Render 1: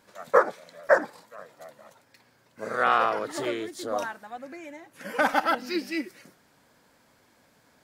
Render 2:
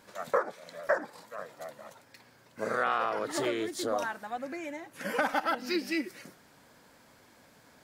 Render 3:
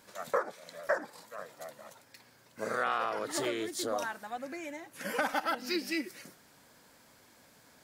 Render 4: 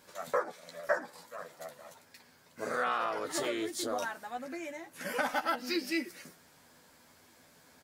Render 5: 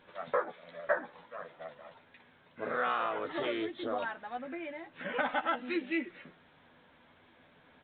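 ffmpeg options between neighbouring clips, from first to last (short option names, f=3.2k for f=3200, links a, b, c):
-af "acompressor=threshold=-31dB:ratio=3,volume=3dB"
-af "highshelf=f=3.9k:g=6.5,volume=-3dB"
-filter_complex "[0:a]asplit=2[a][b];[b]adelay=12,volume=-5dB[c];[a][c]amix=inputs=2:normalize=0,volume=-1.5dB"
-ar 8000 -c:a pcm_alaw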